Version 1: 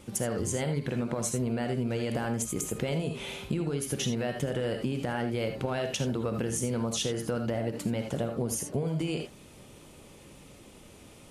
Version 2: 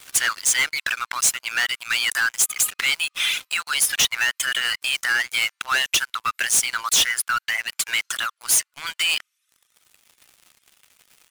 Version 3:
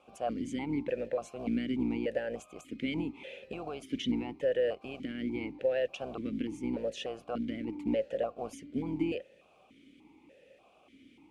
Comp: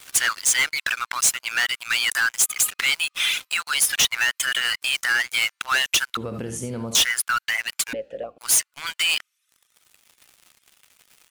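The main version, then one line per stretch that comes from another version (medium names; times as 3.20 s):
2
6.17–6.95 s: from 1
7.93–8.38 s: from 3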